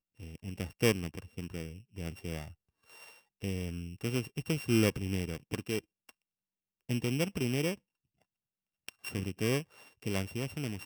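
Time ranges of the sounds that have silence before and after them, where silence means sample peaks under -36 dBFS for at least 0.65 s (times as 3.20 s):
3.43–6.09 s
6.89–7.74 s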